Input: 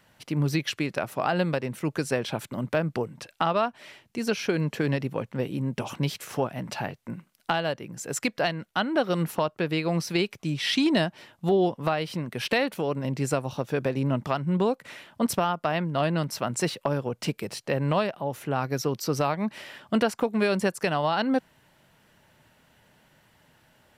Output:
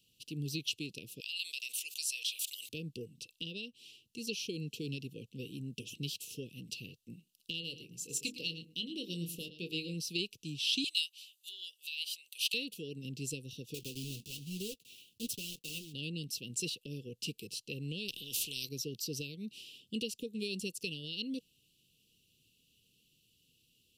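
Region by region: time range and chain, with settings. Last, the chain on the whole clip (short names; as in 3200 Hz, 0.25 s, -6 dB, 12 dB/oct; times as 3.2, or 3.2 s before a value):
1.2–2.69 HPF 1200 Hz 24 dB/oct + high shelf 4600 Hz +5.5 dB + fast leveller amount 70%
7.61–9.94 notches 50/100/150/200/250/300/350/400/450 Hz + doubler 23 ms -10.5 dB + echo 0.111 s -12.5 dB
10.84–12.54 HPF 1000 Hz 24 dB/oct + tilt +2.5 dB/oct + notch 5400 Hz, Q 11
13.74–15.94 block floating point 3-bit + flange 1.1 Hz, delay 5.3 ms, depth 5 ms, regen -44%
18.08–18.69 low shelf 190 Hz +8.5 dB + spectral compressor 4:1
whole clip: Chebyshev band-stop 480–2700 Hz, order 5; resonant low shelf 770 Hz -9 dB, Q 1.5; gain -3.5 dB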